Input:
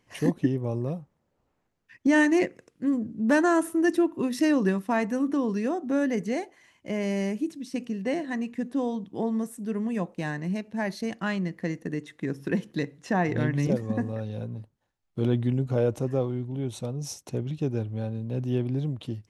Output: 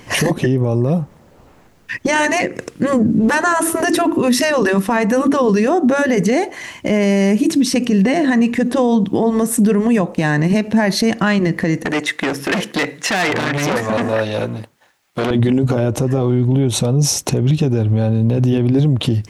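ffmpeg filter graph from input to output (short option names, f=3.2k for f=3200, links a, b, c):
-filter_complex "[0:a]asettb=1/sr,asplit=3[a][b][c];[a]atrim=end=11.854[d];[b]atrim=start=11.85:end=15.31,asetpts=PTS-STARTPTS,afade=t=in:d=0.004:c=qsin,afade=t=out:st=3.456:d=0.004:c=qsin,equalizer=f=2.1k:w=1.5:g=4,aeval=exprs='(tanh(39.8*val(0)+0.5)-tanh(0.5))/39.8':c=same,highpass=f=650:p=1[e];[c]atrim=start=15.306[f];[d][e]acrossfade=d=0.004:c1=hsin:c2=qsin[g];[g][f]acrossfade=d=0.004:c1=qsin:c2=hsin,afftfilt=real='re*lt(hypot(re,im),0.501)':imag='im*lt(hypot(re,im),0.501)':win_size=1024:overlap=0.75,acompressor=threshold=-35dB:ratio=6,alimiter=level_in=33.5dB:limit=-1dB:release=50:level=0:latency=1,volume=-6dB"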